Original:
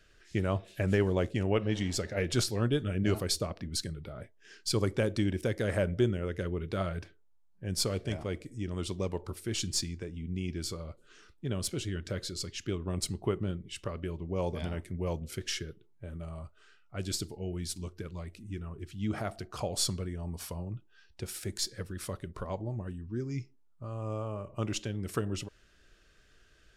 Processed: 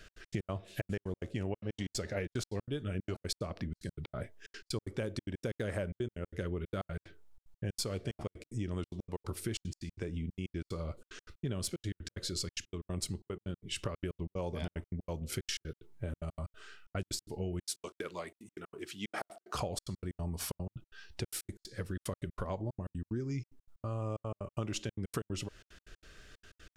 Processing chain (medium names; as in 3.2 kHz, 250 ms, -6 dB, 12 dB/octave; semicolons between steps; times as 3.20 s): 17.62–19.55 s: high-pass 420 Hz 12 dB/octave; compression 6:1, threshold -42 dBFS, peak gain reduction 19 dB; trance gate "x.x.x.xxx" 185 bpm -60 dB; trim +8 dB